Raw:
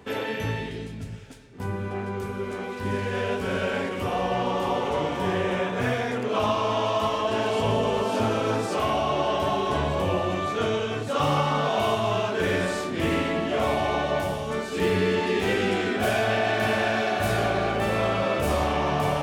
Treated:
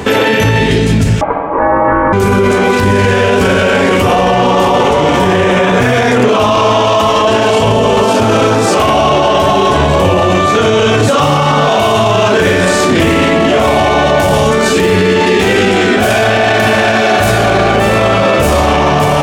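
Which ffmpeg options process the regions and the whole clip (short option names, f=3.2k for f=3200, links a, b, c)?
-filter_complex "[0:a]asettb=1/sr,asplit=3[a][b][c];[a]atrim=end=1.214[d];[b]atrim=start=1.21:end=2.13,asetpts=PTS-STARTPTS,afade=t=in:d=0.004:c=qsin,afade=t=out:st=0.916:d=0.004:c=qsin,lowpass=f=1.2k:w=0.5412,lowpass=f=1.2k:w=1.3066,acontrast=61,aeval=exprs='val(0)*sin(2*PI*720*n/s)':c=same[e];[c]atrim=start=2.126[f];[d][e]acrossfade=d=0.004:c1=hsin:c2=qsin[g];[g][f]acrossfade=d=0.004:c1=qsin:c2=hsin,equalizer=f=6.9k:w=1.7:g=3.5,dynaudnorm=f=100:g=31:m=6dB,alimiter=level_in=29dB:limit=-1dB:release=50:level=0:latency=1,volume=-1dB"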